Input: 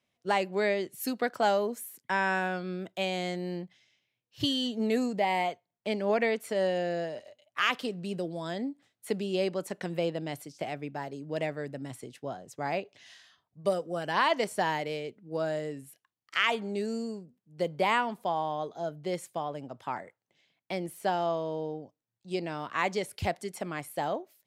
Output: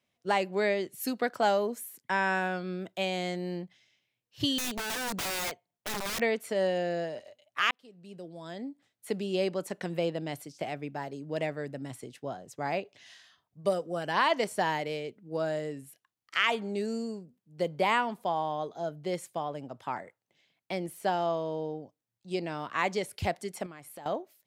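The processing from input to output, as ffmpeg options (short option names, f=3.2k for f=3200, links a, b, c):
-filter_complex "[0:a]asettb=1/sr,asplit=3[a][b][c];[a]atrim=end=4.584[d];[b]atrim=start=4.58:end=6.21,asetpts=PTS-STARTPTS,afade=t=in:d=0.004:c=qsin,afade=t=out:st=1.626:d=0.004:c=qsin,aeval=exprs='(mod(26.6*val(0)+1,2)-1)/26.6':c=same[e];[c]atrim=start=6.206[f];[d][e]acrossfade=d=0.004:c1=hsin:c2=qsin[g];[g][f]acrossfade=d=0.004:c1=qsin:c2=hsin,asettb=1/sr,asplit=3[h][i][j];[h]atrim=end=23.664[k];[i]atrim=start=23.66:end=24.06,asetpts=PTS-STARTPTS,afade=t=in:d=0.004:c=qsin,afade=t=out:st=0.396:d=0.004:c=qsin,acompressor=threshold=-44dB:ratio=4:attack=3.2:release=140:knee=1:detection=peak[l];[j]atrim=start=24.056[m];[k][l]acrossfade=d=0.004:c1=hsin:c2=qsin[n];[n][m]acrossfade=d=0.004:c1=qsin:c2=hsin,asplit=2[o][p];[o]atrim=end=7.71,asetpts=PTS-STARTPTS,afade=t=out:st=7.706:d=0.004:c=hsin[q];[p]atrim=start=7.71,asetpts=PTS-STARTPTS,afade=t=in:d=1.65[r];[q][r]concat=n=2:v=0:a=1"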